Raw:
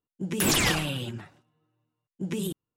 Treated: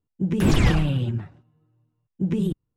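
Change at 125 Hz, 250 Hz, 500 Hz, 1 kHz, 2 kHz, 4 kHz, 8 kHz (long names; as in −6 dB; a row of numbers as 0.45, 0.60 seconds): +11.0, +7.5, +3.5, 0.0, −2.5, −5.5, −11.5 decibels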